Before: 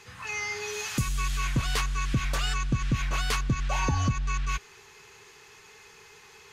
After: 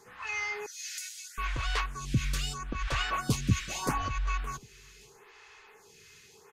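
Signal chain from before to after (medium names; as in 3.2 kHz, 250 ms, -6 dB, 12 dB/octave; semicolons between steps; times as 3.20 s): 0.66–1.38 s: rippled Chebyshev high-pass 1.4 kHz, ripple 6 dB; 2.30–3.44 s: echo throw 570 ms, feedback 20%, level 0 dB; lamp-driven phase shifter 0.78 Hz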